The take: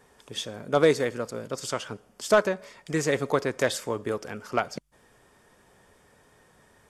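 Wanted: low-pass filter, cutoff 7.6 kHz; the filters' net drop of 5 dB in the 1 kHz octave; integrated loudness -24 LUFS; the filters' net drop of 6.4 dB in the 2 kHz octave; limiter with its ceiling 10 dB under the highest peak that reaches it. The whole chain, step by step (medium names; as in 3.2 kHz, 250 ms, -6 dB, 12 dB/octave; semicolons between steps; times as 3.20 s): low-pass 7.6 kHz; peaking EQ 1 kHz -5 dB; peaking EQ 2 kHz -6.5 dB; trim +10 dB; peak limiter -10.5 dBFS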